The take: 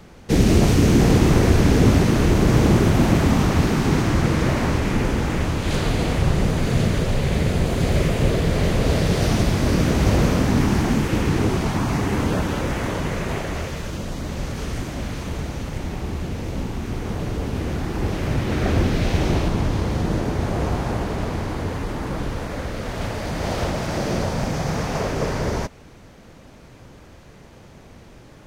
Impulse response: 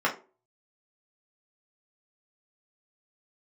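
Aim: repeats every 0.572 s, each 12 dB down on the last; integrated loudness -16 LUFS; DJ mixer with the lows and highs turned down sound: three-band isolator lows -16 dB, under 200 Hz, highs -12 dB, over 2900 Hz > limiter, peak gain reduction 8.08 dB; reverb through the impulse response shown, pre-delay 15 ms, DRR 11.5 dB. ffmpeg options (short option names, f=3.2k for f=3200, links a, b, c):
-filter_complex "[0:a]aecho=1:1:572|1144|1716:0.251|0.0628|0.0157,asplit=2[a][b];[1:a]atrim=start_sample=2205,adelay=15[c];[b][c]afir=irnorm=-1:irlink=0,volume=-24.5dB[d];[a][d]amix=inputs=2:normalize=0,acrossover=split=200 2900:gain=0.158 1 0.251[e][f][g];[e][f][g]amix=inputs=3:normalize=0,volume=11dB,alimiter=limit=-5dB:level=0:latency=1"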